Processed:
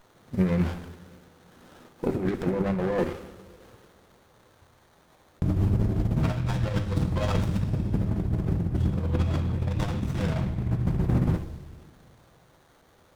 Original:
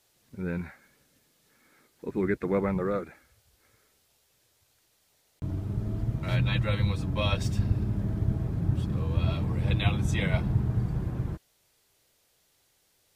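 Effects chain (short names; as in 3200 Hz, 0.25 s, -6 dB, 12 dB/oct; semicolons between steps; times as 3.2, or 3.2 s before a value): limiter -21.5 dBFS, peak gain reduction 9 dB; negative-ratio compressor -33 dBFS, ratio -0.5; on a send at -5.5 dB: reverb, pre-delay 3 ms; on the sum: running maximum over 17 samples; gain +8 dB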